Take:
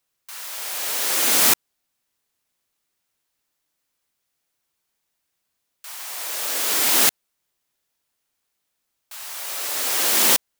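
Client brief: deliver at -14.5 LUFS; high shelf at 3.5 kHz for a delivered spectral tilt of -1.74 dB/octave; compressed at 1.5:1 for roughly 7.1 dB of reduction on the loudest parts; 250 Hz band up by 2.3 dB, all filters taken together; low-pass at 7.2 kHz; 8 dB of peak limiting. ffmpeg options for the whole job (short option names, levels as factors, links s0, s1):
-af "lowpass=7200,equalizer=f=250:t=o:g=3,highshelf=f=3500:g=-4.5,acompressor=threshold=0.0112:ratio=1.5,volume=10,alimiter=limit=0.668:level=0:latency=1"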